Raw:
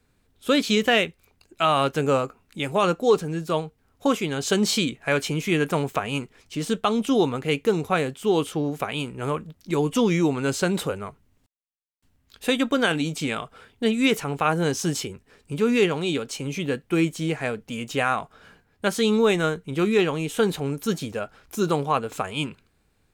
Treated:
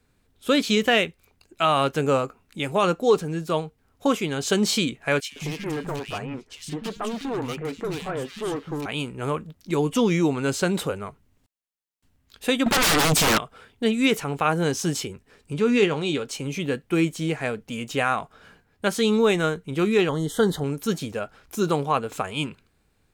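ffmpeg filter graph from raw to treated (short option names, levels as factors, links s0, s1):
-filter_complex "[0:a]asettb=1/sr,asplit=3[s0][s1][s2];[s0]atrim=end=5.204[s3];[s1]atrim=start=5.2:end=8.86,asetpts=PTS-STARTPTS,afade=t=in:d=0.004:c=qsin,afade=t=out:st=3.656:d=0.004:c=qsin,highshelf=f=9900:g=-9.5,asoftclip=type=hard:threshold=0.0562,acrossover=split=200|2000[s4][s5][s6];[s4]adelay=120[s7];[s5]adelay=160[s8];[s7][s8][s6]amix=inputs=3:normalize=0,atrim=end_sample=161406[s9];[s2]atrim=start=8.856[s10];[s3][s9]acrossfade=d=0.004:c1=hsin:c2=qsin[s11];[s11][s10]acrossfade=d=0.004:c1=qsin:c2=hsin,asettb=1/sr,asplit=3[s12][s13][s14];[s12]atrim=end=12.664[s15];[s13]atrim=start=12.66:end=13.38,asetpts=PTS-STARTPTS,afade=t=in:d=0.004:c=qsin,afade=t=out:st=0.716:d=0.004:c=qsin,bandreject=f=550:w=6.2,aeval=exprs='(tanh(8.91*val(0)+0.45)-tanh(0.45))/8.91':c=same,aeval=exprs='0.158*sin(PI/2*7.08*val(0)/0.158)':c=same[s16];[s14]atrim=start=13.376[s17];[s15][s16]acrossfade=d=0.004:c1=hsin:c2=qsin[s18];[s18][s17]acrossfade=d=0.004:c1=qsin:c2=hsin,asettb=1/sr,asplit=3[s19][s20][s21];[s19]atrim=end=15.534[s22];[s20]atrim=start=15.53:end=16.25,asetpts=PTS-STARTPTS,afade=t=in:d=0.004:c=qsin,afade=t=out:st=0.716:d=0.004:c=qsin,lowpass=8300,asplit=2[s23][s24];[s24]adelay=20,volume=0.251[s25];[s23][s25]amix=inputs=2:normalize=0,atrim=end_sample=31752[s26];[s21]atrim=start=16.246[s27];[s22][s26]acrossfade=d=0.004:c1=hsin:c2=qsin[s28];[s28][s27]acrossfade=d=0.004:c1=qsin:c2=hsin,asettb=1/sr,asplit=3[s29][s30][s31];[s29]atrim=end=20.094[s32];[s30]atrim=start=20.09:end=20.64,asetpts=PTS-STARTPTS,afade=t=in:d=0.004:c=qsin,afade=t=out:st=0.546:d=0.004:c=qsin,asuperstop=centerf=2500:order=12:qfactor=2.7,lowshelf=f=150:g=6[s33];[s31]atrim=start=20.636[s34];[s32][s33]acrossfade=d=0.004:c1=hsin:c2=qsin[s35];[s35][s34]acrossfade=d=0.004:c1=qsin:c2=hsin"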